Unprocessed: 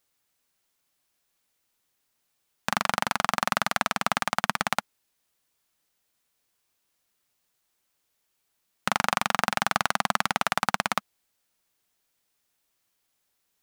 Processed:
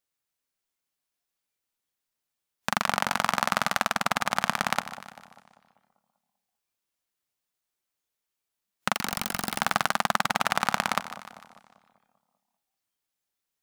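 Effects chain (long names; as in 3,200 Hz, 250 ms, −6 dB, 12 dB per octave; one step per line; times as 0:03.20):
0:08.95–0:09.60: wrap-around overflow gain 15.5 dB
echo with a time of its own for lows and highs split 940 Hz, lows 196 ms, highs 150 ms, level −13 dB
noise reduction from a noise print of the clip's start 10 dB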